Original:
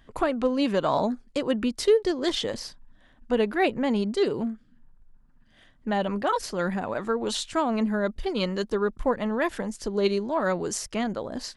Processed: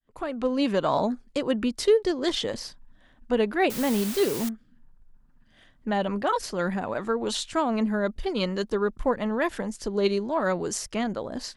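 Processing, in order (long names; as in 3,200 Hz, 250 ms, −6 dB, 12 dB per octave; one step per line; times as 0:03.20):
fade in at the beginning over 0.56 s
0:03.70–0:04.49: bit-depth reduction 6 bits, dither triangular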